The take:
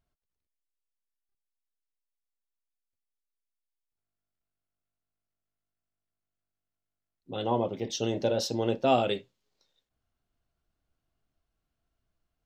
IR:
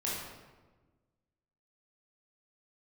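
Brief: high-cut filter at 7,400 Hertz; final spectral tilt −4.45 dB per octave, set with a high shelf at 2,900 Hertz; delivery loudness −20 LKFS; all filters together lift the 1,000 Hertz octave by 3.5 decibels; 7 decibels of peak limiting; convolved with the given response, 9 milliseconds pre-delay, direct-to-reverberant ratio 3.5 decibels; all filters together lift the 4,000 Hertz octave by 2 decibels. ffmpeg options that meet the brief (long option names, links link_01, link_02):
-filter_complex "[0:a]lowpass=7400,equalizer=frequency=1000:width_type=o:gain=5.5,highshelf=frequency=2900:gain=-7,equalizer=frequency=4000:width_type=o:gain=8,alimiter=limit=-17.5dB:level=0:latency=1,asplit=2[link_01][link_02];[1:a]atrim=start_sample=2205,adelay=9[link_03];[link_02][link_03]afir=irnorm=-1:irlink=0,volume=-8.5dB[link_04];[link_01][link_04]amix=inputs=2:normalize=0,volume=8dB"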